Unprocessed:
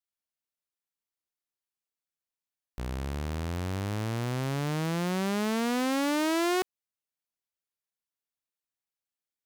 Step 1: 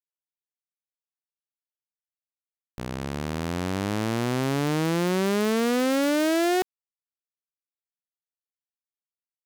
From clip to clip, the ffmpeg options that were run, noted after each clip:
-af "acrusher=bits=4:mix=0:aa=0.5,volume=4dB"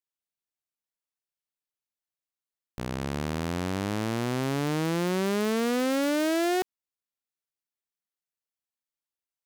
-af "alimiter=limit=-22.5dB:level=0:latency=1"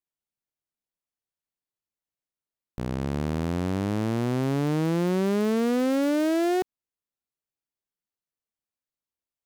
-af "tiltshelf=f=770:g=4.5"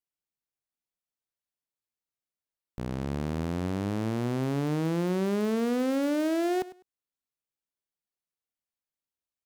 -af "aecho=1:1:101|202:0.141|0.0283,volume=-3.5dB"

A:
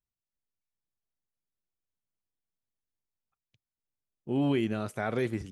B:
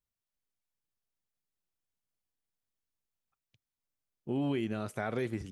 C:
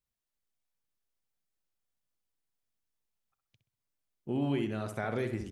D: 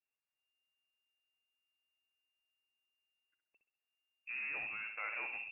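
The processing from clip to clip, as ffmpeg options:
-af "acompressor=threshold=-32dB:ratio=2"
-filter_complex "[0:a]asplit=2[a][b];[b]adelay=64,lowpass=f=2.1k:p=1,volume=-6.5dB,asplit=2[c][d];[d]adelay=64,lowpass=f=2.1k:p=1,volume=0.41,asplit=2[e][f];[f]adelay=64,lowpass=f=2.1k:p=1,volume=0.41,asplit=2[g][h];[h]adelay=64,lowpass=f=2.1k:p=1,volume=0.41,asplit=2[i][j];[j]adelay=64,lowpass=f=2.1k:p=1,volume=0.41[k];[a][c][e][g][i][k]amix=inputs=6:normalize=0"
-filter_complex "[0:a]acrossover=split=930[a][b];[a]asoftclip=type=tanh:threshold=-35.5dB[c];[c][b]amix=inputs=2:normalize=0,lowpass=f=2.4k:t=q:w=0.5098,lowpass=f=2.4k:t=q:w=0.6013,lowpass=f=2.4k:t=q:w=0.9,lowpass=f=2.4k:t=q:w=2.563,afreqshift=-2800,volume=-4dB"

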